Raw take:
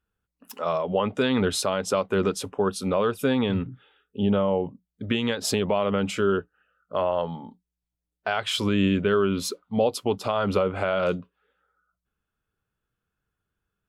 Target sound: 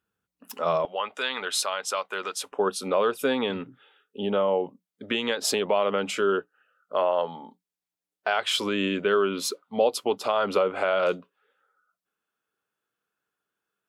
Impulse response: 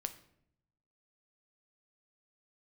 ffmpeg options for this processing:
-af "asetnsamples=nb_out_samples=441:pad=0,asendcmd='0.85 highpass f 930;2.52 highpass f 350',highpass=130,volume=1.5dB"

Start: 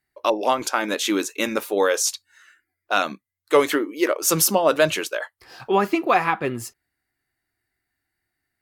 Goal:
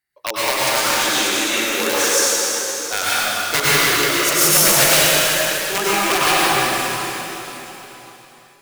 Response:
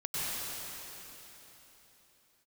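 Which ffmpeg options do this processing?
-filter_complex "[0:a]aeval=exprs='(mod(2.82*val(0)+1,2)-1)/2.82':channel_layout=same,tiltshelf=frequency=860:gain=-5.5[link_01];[1:a]atrim=start_sample=2205[link_02];[link_01][link_02]afir=irnorm=-1:irlink=0,volume=-3dB"

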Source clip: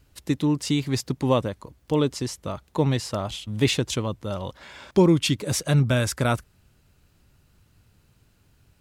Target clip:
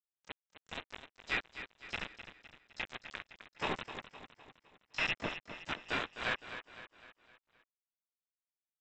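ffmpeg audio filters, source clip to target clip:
ffmpeg -i in.wav -filter_complex "[0:a]aderivative,acrossover=split=120|850[link_01][link_02][link_03];[link_01]acrusher=samples=19:mix=1:aa=0.000001[link_04];[link_04][link_02][link_03]amix=inputs=3:normalize=0,flanger=delay=15.5:depth=3.8:speed=0.24,lowpass=frequency=2600:width_type=q:width=0.5098,lowpass=frequency=2600:width_type=q:width=0.6013,lowpass=frequency=2600:width_type=q:width=0.9,lowpass=frequency=2600:width_type=q:width=2.563,afreqshift=-3000,aresample=8000,acrusher=bits=6:mix=0:aa=0.000001,aresample=44100,aecho=1:1:256|512|768|1024|1280:0.282|0.138|0.0677|0.0332|0.0162,asplit=4[link_05][link_06][link_07][link_08];[link_06]asetrate=29433,aresample=44100,atempo=1.49831,volume=-11dB[link_09];[link_07]asetrate=33038,aresample=44100,atempo=1.33484,volume=-9dB[link_10];[link_08]asetrate=88200,aresample=44100,atempo=0.5,volume=-16dB[link_11];[link_05][link_09][link_10][link_11]amix=inputs=4:normalize=0,volume=8.5dB" out.wav

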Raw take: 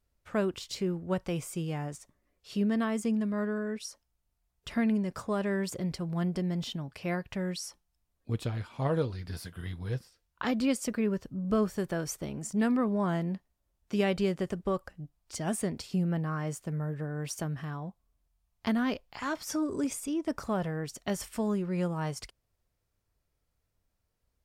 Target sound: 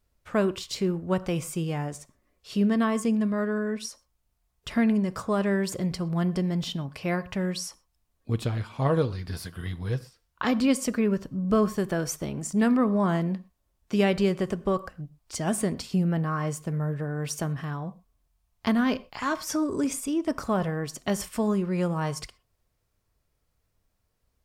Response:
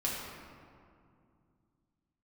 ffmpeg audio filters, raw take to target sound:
-filter_complex "[0:a]asplit=2[link_01][link_02];[link_02]equalizer=frequency=1100:width_type=o:width=0.21:gain=14[link_03];[1:a]atrim=start_sample=2205,afade=type=out:start_time=0.18:duration=0.01,atrim=end_sample=8379[link_04];[link_03][link_04]afir=irnorm=-1:irlink=0,volume=-19.5dB[link_05];[link_01][link_05]amix=inputs=2:normalize=0,volume=4dB"

